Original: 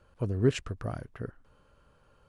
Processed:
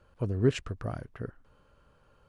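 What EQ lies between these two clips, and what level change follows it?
high shelf 8400 Hz -5.5 dB; 0.0 dB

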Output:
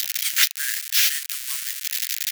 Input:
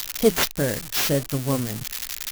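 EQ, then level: steep high-pass 1600 Hz 36 dB/oct; +5.5 dB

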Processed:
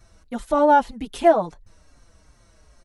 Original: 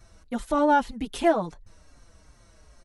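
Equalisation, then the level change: dynamic EQ 690 Hz, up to +7 dB, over -33 dBFS, Q 1.1; 0.0 dB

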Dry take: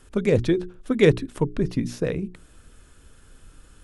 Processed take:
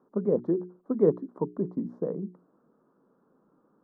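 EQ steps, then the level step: elliptic band-pass 180–1100 Hz, stop band 40 dB; -4.5 dB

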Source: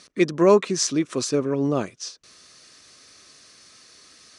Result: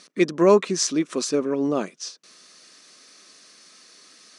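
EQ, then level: brick-wall FIR high-pass 150 Hz; 0.0 dB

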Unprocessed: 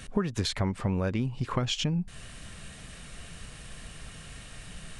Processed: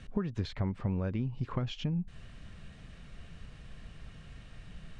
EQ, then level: dynamic EQ 8900 Hz, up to -8 dB, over -53 dBFS, Q 0.77; air absorption 100 m; low shelf 310 Hz +6.5 dB; -8.5 dB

